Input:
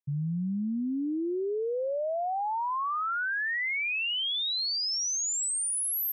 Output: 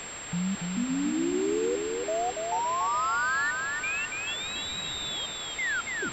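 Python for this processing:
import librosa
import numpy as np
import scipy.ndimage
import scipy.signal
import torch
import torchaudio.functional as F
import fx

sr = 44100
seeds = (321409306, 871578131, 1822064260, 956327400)

p1 = fx.tape_stop_end(x, sr, length_s=1.63)
p2 = scipy.signal.sosfilt(scipy.signal.butter(2, 91.0, 'highpass', fs=sr, output='sos'), p1)
p3 = fx.high_shelf(p2, sr, hz=2600.0, db=-8.5)
p4 = fx.hum_notches(p3, sr, base_hz=50, count=7)
p5 = fx.over_compress(p4, sr, threshold_db=-33.0, ratio=-1.0)
p6 = p4 + (p5 * 10.0 ** (2.0 / 20.0))
p7 = fx.step_gate(p6, sr, bpm=137, pattern='...xx..xxxxxxxxx', floor_db=-60.0, edge_ms=4.5)
p8 = fx.quant_dither(p7, sr, seeds[0], bits=6, dither='triangular')
p9 = p8 + fx.echo_feedback(p8, sr, ms=284, feedback_pct=49, wet_db=-4.0, dry=0)
p10 = fx.pwm(p9, sr, carrier_hz=7500.0)
y = p10 * 10.0 ** (-3.5 / 20.0)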